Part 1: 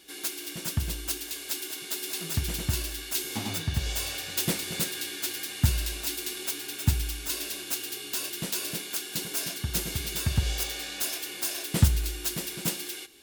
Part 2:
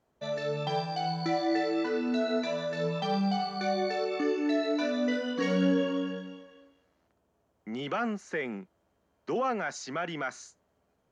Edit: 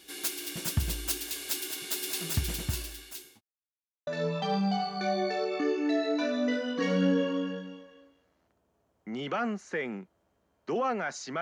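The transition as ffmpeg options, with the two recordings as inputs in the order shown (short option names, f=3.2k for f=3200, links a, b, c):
-filter_complex "[0:a]apad=whole_dur=11.41,atrim=end=11.41,asplit=2[a][b];[a]atrim=end=3.41,asetpts=PTS-STARTPTS,afade=t=out:st=2.29:d=1.12[c];[b]atrim=start=3.41:end=4.07,asetpts=PTS-STARTPTS,volume=0[d];[1:a]atrim=start=2.67:end=10.01,asetpts=PTS-STARTPTS,afade=t=in:d=0.004:c=hsin[e];[c][d][e]concat=n=3:v=0:a=1"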